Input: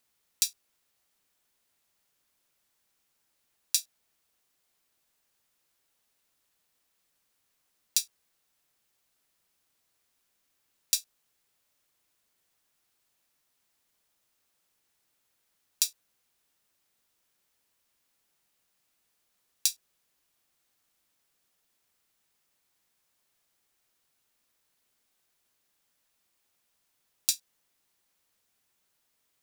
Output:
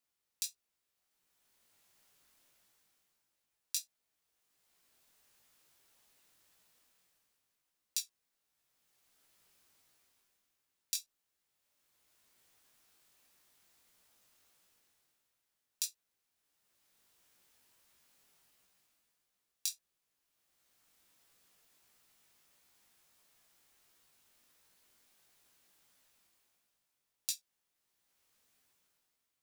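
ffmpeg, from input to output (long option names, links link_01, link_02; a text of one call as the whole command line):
ffmpeg -i in.wav -af "dynaudnorm=framelen=140:gausssize=13:maxgain=16dB,flanger=delay=15.5:depth=6.5:speed=1.5,volume=-7.5dB" out.wav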